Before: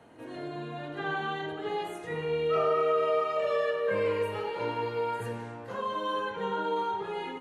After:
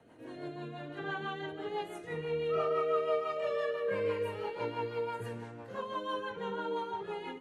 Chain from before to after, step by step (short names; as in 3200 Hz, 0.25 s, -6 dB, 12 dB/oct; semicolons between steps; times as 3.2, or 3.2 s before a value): rotary speaker horn 6 Hz; gain -2.5 dB